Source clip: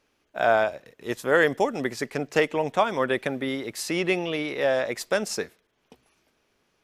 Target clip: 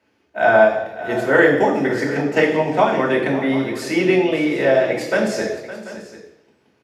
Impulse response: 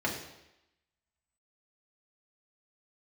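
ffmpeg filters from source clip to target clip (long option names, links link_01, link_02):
-filter_complex "[0:a]aecho=1:1:562|738:0.178|0.15[link_01];[1:a]atrim=start_sample=2205[link_02];[link_01][link_02]afir=irnorm=-1:irlink=0,volume=-2dB"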